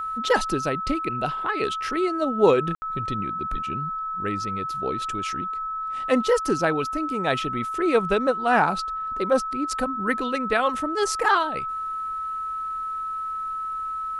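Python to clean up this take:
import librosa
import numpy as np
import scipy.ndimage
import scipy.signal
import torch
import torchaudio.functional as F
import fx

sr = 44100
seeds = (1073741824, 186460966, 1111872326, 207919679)

y = fx.notch(x, sr, hz=1300.0, q=30.0)
y = fx.fix_ambience(y, sr, seeds[0], print_start_s=13.13, print_end_s=13.63, start_s=2.75, end_s=2.82)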